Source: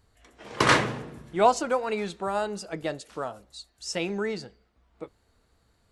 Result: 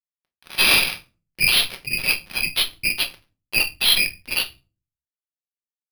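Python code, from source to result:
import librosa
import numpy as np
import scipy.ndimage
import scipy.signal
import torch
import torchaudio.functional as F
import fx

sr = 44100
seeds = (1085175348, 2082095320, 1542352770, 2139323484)

y = fx.partial_stretch(x, sr, pct=84)
y = scipy.signal.sosfilt(scipy.signal.butter(16, 2200.0, 'highpass', fs=sr, output='sos'), y)
y = fx.high_shelf(y, sr, hz=5100.0, db=-6.0)
y = y + 0.6 * np.pad(y, (int(1.2 * sr / 1000.0), 0))[:len(y)]
y = fx.spec_gate(y, sr, threshold_db=-15, keep='strong')
y = fx.fuzz(y, sr, gain_db=46.0, gate_db=-54.0)
y = fx.room_shoebox(y, sr, seeds[0], volume_m3=180.0, walls='furnished', distance_m=1.0)
y = np.repeat(y[::6], 6)[:len(y)]
y = y * 10.0 ** (-2.0 / 20.0)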